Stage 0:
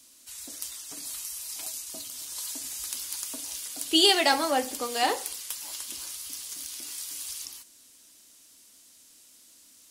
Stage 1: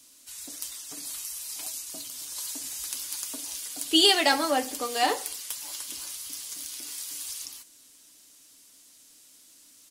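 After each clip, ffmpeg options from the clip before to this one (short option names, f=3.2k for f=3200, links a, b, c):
-af "aecho=1:1:6.8:0.31"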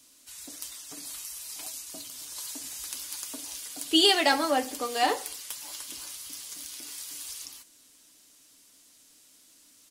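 -af "equalizer=f=12k:t=o:w=2.5:g=-3.5"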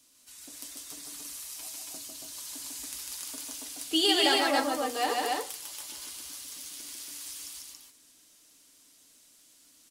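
-af "aecho=1:1:148.7|279.9:0.794|0.794,volume=-5dB"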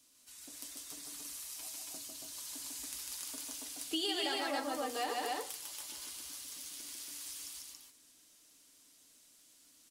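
-af "acompressor=threshold=-29dB:ratio=4,volume=-4dB"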